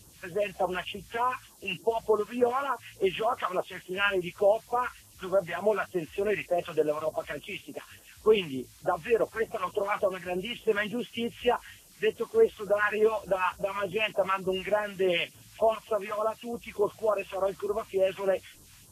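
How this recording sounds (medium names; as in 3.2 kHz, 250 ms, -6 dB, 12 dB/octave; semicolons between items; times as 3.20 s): a quantiser's noise floor 10-bit, dither triangular; phasing stages 2, 3.4 Hz, lowest notch 400–2300 Hz; Vorbis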